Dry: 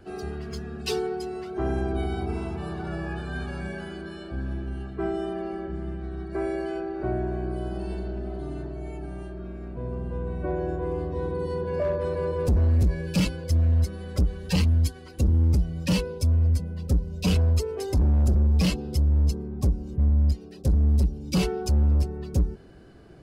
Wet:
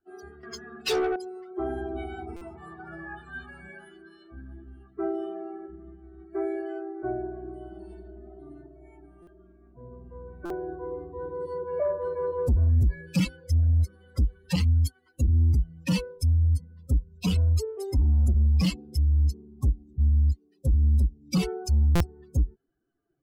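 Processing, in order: per-bin expansion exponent 2; 0.43–1.16 overdrive pedal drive 21 dB, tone 3900 Hz, clips at -19.5 dBFS; stuck buffer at 2.36/9.22/10.45/21.95, samples 256, times 8; gain +1.5 dB

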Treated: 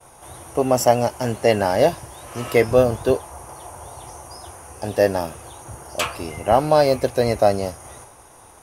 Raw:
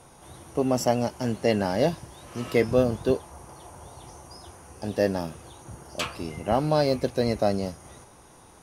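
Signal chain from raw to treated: EQ curve 120 Hz 0 dB, 170 Hz -7 dB, 690 Hz +4 dB, 2600 Hz -1 dB, 4200 Hz -7 dB, 11000 Hz -2 dB; expander -48 dBFS; high shelf 3800 Hz +9 dB; gain +5 dB

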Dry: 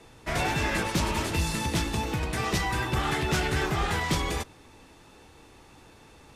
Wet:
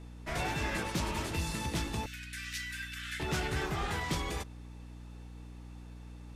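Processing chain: 2.06–3.2 Chebyshev high-pass 1500 Hz, order 5; hum 60 Hz, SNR 10 dB; gain -7 dB

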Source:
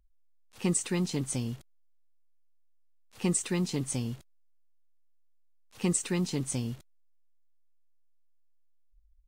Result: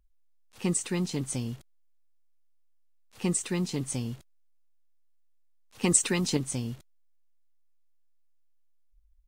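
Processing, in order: 5.83–6.37 harmonic-percussive split percussive +8 dB

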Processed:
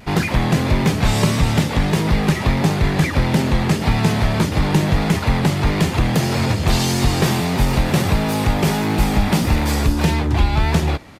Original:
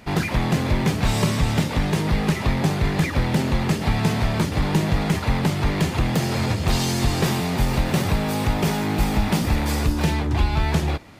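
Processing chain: vibrato 1.6 Hz 44 cents; downsampling 32000 Hz; gain +4 dB

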